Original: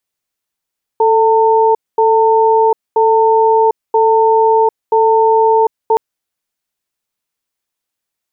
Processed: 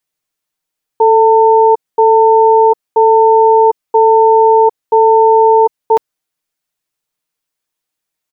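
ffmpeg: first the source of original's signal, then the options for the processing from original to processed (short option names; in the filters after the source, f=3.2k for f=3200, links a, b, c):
-f lavfi -i "aevalsrc='0.316*(sin(2*PI*442*t)+sin(2*PI*900*t))*clip(min(mod(t,0.98),0.75-mod(t,0.98))/0.005,0,1)':d=4.97:s=44100"
-af "aecho=1:1:6.5:0.52"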